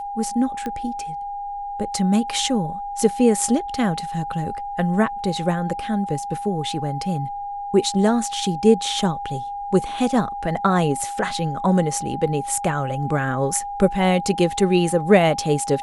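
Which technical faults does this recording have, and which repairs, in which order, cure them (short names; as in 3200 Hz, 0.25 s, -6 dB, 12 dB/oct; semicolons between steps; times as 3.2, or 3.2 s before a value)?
tone 810 Hz -27 dBFS
0.66 pop -15 dBFS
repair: de-click; notch 810 Hz, Q 30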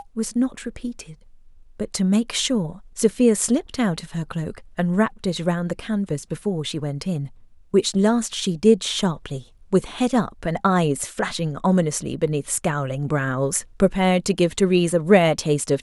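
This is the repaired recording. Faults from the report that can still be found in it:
none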